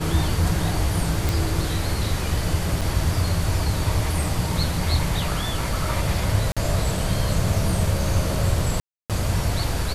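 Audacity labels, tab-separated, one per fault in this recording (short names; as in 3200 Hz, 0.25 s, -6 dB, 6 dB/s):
1.290000	1.290000	pop
2.810000	2.820000	gap 5.2 ms
6.520000	6.570000	gap 46 ms
8.800000	9.100000	gap 0.297 s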